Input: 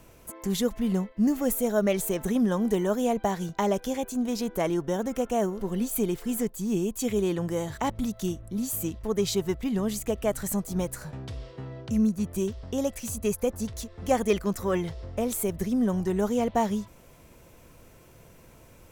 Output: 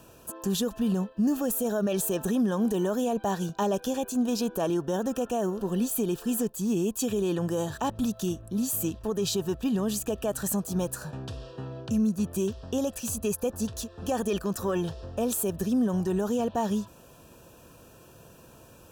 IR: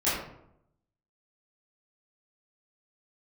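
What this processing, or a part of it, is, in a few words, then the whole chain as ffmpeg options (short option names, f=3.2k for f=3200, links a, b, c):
PA system with an anti-feedback notch: -af "highpass=f=100:p=1,asuperstop=centerf=2100:order=8:qfactor=3.9,alimiter=limit=-21.5dB:level=0:latency=1:release=35,volume=2.5dB"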